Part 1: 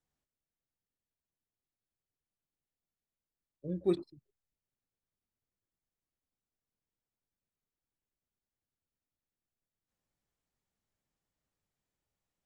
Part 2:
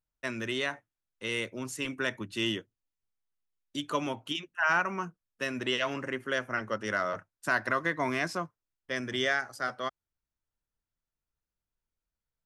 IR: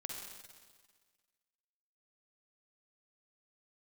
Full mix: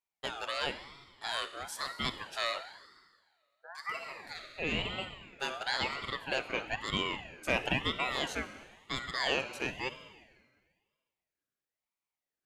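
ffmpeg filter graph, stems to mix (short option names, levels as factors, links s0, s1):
-filter_complex "[0:a]lowpass=f=700:t=q:w=4.9,volume=0.422,asplit=2[s0][s1];[1:a]volume=0.794,asplit=2[s2][s3];[s3]volume=0.631[s4];[s1]apad=whole_len=549330[s5];[s2][s5]sidechaincompress=threshold=0.00251:ratio=8:attack=8.4:release=804[s6];[2:a]atrim=start_sample=2205[s7];[s4][s7]afir=irnorm=-1:irlink=0[s8];[s0][s6][s8]amix=inputs=3:normalize=0,highpass=180,lowshelf=f=250:g=-7,aeval=exprs='val(0)*sin(2*PI*1300*n/s+1300*0.3/1*sin(2*PI*1*n/s))':c=same"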